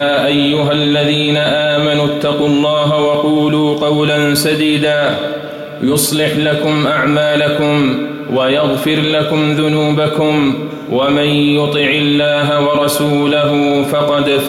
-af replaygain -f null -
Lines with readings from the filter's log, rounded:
track_gain = -5.1 dB
track_peak = 0.605